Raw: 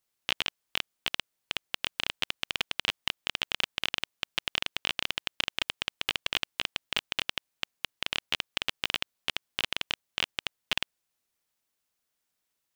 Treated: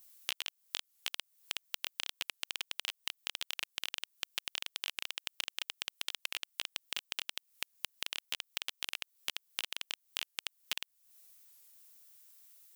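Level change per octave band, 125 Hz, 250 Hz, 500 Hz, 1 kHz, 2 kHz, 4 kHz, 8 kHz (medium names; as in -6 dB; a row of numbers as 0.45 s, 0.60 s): under -15 dB, -16.5 dB, -13.5 dB, -11.5 dB, -9.0 dB, -7.5 dB, 0.0 dB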